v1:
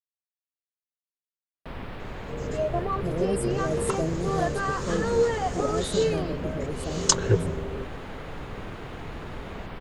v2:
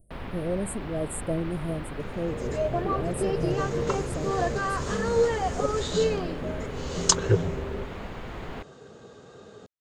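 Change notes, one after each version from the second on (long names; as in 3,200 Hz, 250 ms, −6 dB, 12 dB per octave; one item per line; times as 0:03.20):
speech: entry −2.70 s
first sound: entry −1.55 s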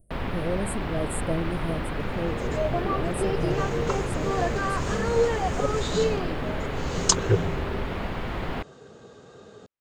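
first sound +7.0 dB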